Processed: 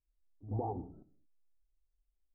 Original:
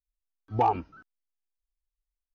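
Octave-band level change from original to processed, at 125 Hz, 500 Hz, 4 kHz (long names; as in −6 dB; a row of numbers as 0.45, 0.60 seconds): −3.5 dB, −10.0 dB, can't be measured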